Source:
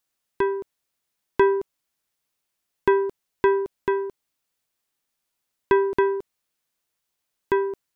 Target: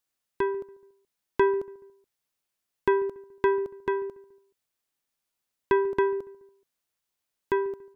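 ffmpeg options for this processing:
ffmpeg -i in.wav -filter_complex "[0:a]asplit=2[link_01][link_02];[link_02]adelay=142,lowpass=frequency=1400:poles=1,volume=-20dB,asplit=2[link_03][link_04];[link_04]adelay=142,lowpass=frequency=1400:poles=1,volume=0.46,asplit=2[link_05][link_06];[link_06]adelay=142,lowpass=frequency=1400:poles=1,volume=0.46[link_07];[link_01][link_03][link_05][link_07]amix=inputs=4:normalize=0,volume=-4dB" out.wav

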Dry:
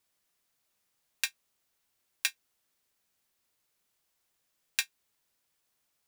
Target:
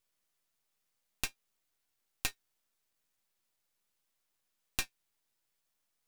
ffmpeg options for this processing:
ffmpeg -i in.wav -af "flanger=delay=8.7:depth=1.1:regen=51:speed=1.5:shape=sinusoidal,aeval=exprs='max(val(0),0)':channel_layout=same,volume=3.5dB" out.wav

